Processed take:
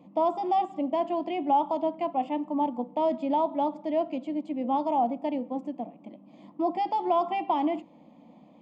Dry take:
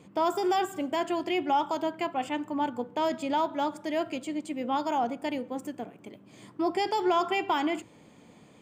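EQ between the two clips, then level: high-pass 200 Hz 6 dB/octave; tape spacing loss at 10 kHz 41 dB; static phaser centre 410 Hz, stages 6; +7.0 dB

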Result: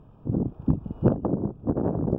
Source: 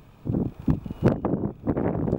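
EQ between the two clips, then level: boxcar filter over 21 samples; 0.0 dB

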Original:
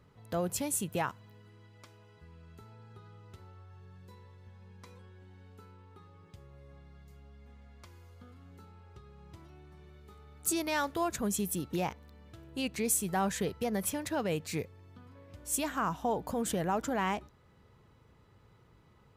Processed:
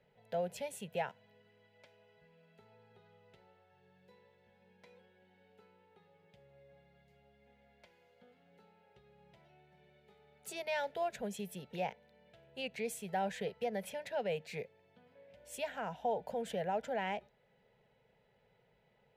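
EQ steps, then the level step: three-band isolator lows -12 dB, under 470 Hz, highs -20 dB, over 3.2 kHz; static phaser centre 310 Hz, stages 6; +2.0 dB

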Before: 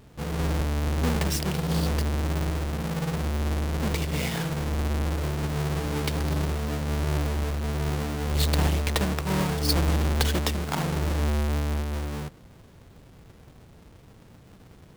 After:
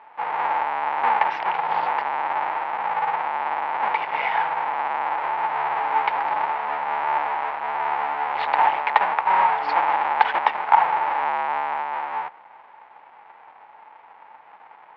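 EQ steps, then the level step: resonant high-pass 870 Hz, resonance Q 8.9; resonant low-pass 2.2 kHz, resonance Q 2.1; distance through air 230 m; +3.5 dB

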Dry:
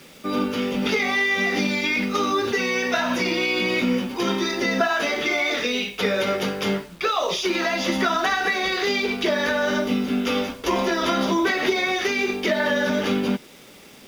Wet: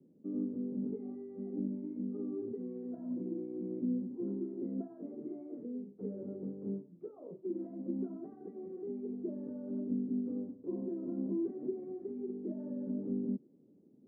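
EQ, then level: high-pass 110 Hz 24 dB/octave; four-pole ladder low-pass 380 Hz, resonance 40%; -7.0 dB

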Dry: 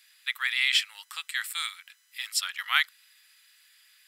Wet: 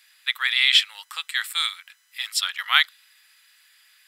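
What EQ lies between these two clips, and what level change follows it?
dynamic bell 3.6 kHz, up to +8 dB, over -42 dBFS, Q 2.9; tilt shelf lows +4 dB, about 1.3 kHz; +5.5 dB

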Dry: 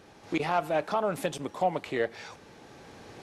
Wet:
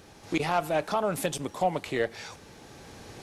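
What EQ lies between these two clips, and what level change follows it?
bass shelf 110 Hz +9.5 dB; treble shelf 4.8 kHz +10 dB; 0.0 dB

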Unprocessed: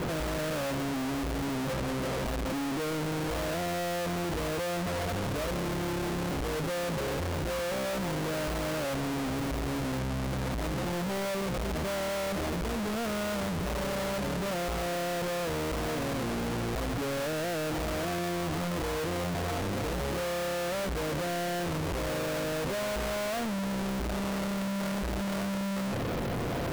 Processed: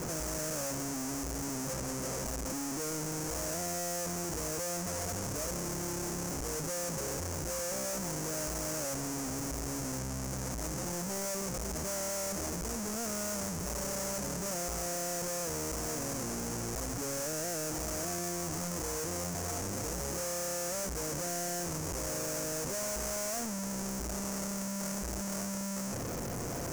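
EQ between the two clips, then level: resonant high shelf 4.8 kHz +9.5 dB, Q 3; -6.0 dB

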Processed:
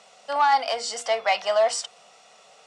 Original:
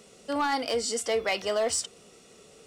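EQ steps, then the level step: band-pass 140–6200 Hz; resonant low shelf 510 Hz -12 dB, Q 3; hum notches 60/120/180/240/300/360/420/480 Hz; +3.5 dB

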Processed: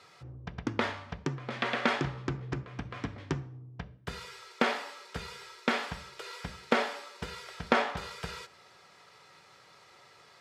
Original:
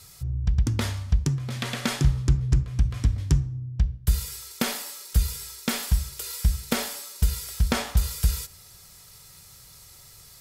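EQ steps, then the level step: band-pass 360–2200 Hz; +4.5 dB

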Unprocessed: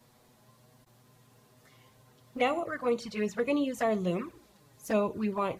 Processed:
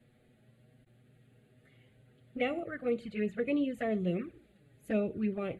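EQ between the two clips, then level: brick-wall FIR low-pass 12 kHz; treble shelf 3.7 kHz -11.5 dB; static phaser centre 2.4 kHz, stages 4; 0.0 dB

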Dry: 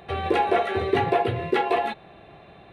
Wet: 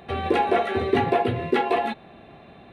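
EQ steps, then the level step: peaking EQ 240 Hz +10 dB 0.38 oct; 0.0 dB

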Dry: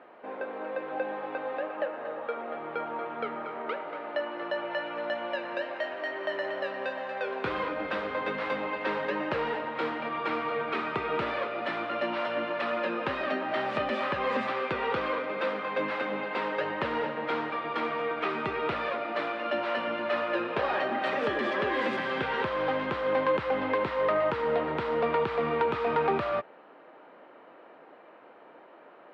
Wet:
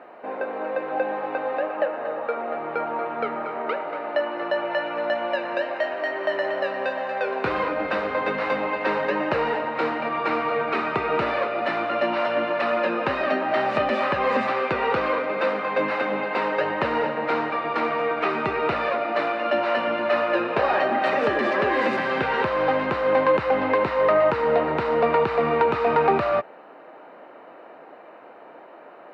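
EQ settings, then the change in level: peaking EQ 700 Hz +3.5 dB 0.55 oct; band-stop 3.3 kHz, Q 8.1; +6.0 dB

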